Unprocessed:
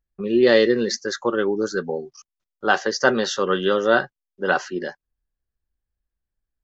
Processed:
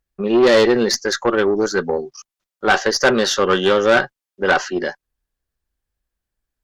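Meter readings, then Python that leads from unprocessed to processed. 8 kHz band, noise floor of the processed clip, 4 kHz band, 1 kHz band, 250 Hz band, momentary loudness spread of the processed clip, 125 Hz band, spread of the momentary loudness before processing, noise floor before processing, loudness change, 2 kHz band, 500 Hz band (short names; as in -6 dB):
n/a, under -85 dBFS, +6.0 dB, +4.5 dB, +3.5 dB, 11 LU, +4.0 dB, 14 LU, under -85 dBFS, +4.0 dB, +4.0 dB, +4.0 dB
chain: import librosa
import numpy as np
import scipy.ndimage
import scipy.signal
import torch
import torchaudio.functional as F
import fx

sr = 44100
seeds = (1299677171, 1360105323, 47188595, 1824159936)

y = fx.tube_stage(x, sr, drive_db=15.0, bias=0.35)
y = fx.low_shelf(y, sr, hz=220.0, db=-5.5)
y = y * 10.0 ** (8.5 / 20.0)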